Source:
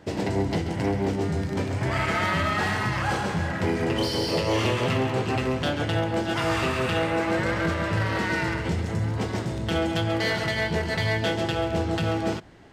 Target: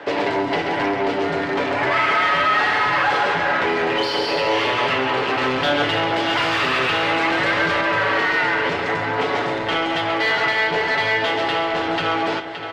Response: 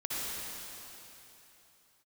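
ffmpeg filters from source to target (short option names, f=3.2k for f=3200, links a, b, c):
-filter_complex "[0:a]asettb=1/sr,asplit=3[a][b][c];[a]atrim=end=5.414[d];[b]atrim=start=5.41:end=7.81,asetpts=PTS-STARTPTS,afade=t=in:d=0.004:c=qsin,afade=t=out:st=2.396:d=0.004:c=qsin,acontrast=80[e];[c]atrim=start=7.806[f];[d][e]acrossfade=d=0.004:c1=hsin:c2=qsin[g];[g][f]acrossfade=d=0.004:c1=qsin:c2=hsin,lowshelf=f=68:g=10.5,acrossover=split=240|3000[h][i][j];[i]acompressor=threshold=-28dB:ratio=6[k];[h][k][j]amix=inputs=3:normalize=0,aecho=1:1:570|1140|1710|2280:0.168|0.0739|0.0325|0.0143,asplit=2[l][m];[m]highpass=f=720:p=1,volume=27dB,asoftclip=type=tanh:threshold=-8.5dB[n];[l][n]amix=inputs=2:normalize=0,lowpass=f=3k:p=1,volume=-6dB,acrossover=split=310 4200:gain=0.178 1 0.126[o][p][q];[o][p][q]amix=inputs=3:normalize=0,aecho=1:1:7:0.51,volume=-1dB"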